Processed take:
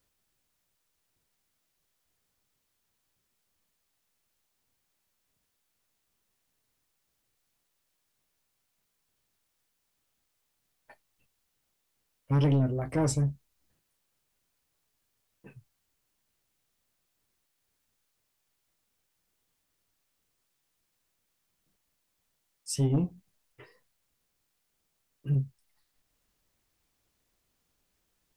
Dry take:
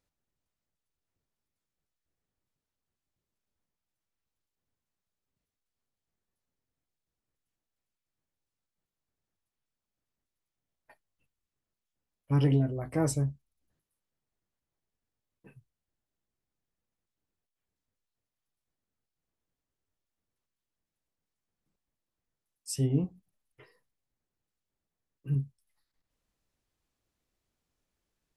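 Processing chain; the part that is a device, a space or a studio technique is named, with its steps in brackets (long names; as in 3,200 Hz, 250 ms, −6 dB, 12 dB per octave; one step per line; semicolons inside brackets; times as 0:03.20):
compact cassette (soft clipping −23 dBFS, distortion −13 dB; low-pass filter 9,300 Hz; tape wow and flutter; white noise bed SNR 41 dB)
level +4 dB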